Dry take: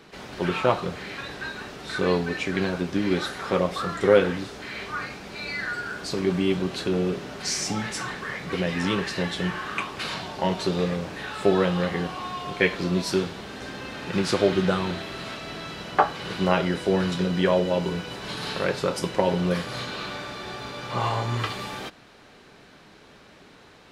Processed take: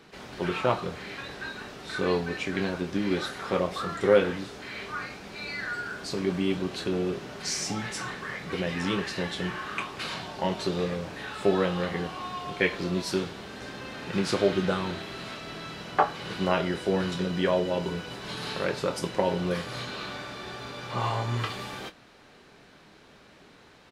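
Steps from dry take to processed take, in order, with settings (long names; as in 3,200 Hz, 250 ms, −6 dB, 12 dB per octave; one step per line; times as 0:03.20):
double-tracking delay 25 ms −11.5 dB
level −3.5 dB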